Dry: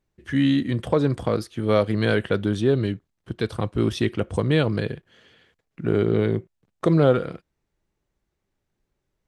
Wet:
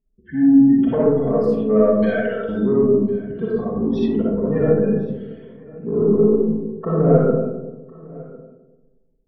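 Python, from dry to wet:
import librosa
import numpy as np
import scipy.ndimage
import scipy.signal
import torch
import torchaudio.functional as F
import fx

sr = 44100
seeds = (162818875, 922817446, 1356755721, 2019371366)

y = fx.highpass(x, sr, hz=540.0, slope=24, at=(2.02, 2.49))
y = fx.spec_gate(y, sr, threshold_db=-15, keep='strong')
y = fx.lowpass(y, sr, hz=1300.0, slope=6)
y = y + 0.87 * np.pad(y, (int(4.5 * sr / 1000.0), 0))[:len(y)]
y = 10.0 ** (-9.0 / 20.0) * np.tanh(y / 10.0 ** (-9.0 / 20.0))
y = y + 10.0 ** (-22.0 / 20.0) * np.pad(y, (int(1053 * sr / 1000.0), 0))[:len(y)]
y = fx.rev_freeverb(y, sr, rt60_s=1.2, hf_ratio=0.3, predelay_ms=15, drr_db=-7.0)
y = F.gain(torch.from_numpy(y), -4.0).numpy()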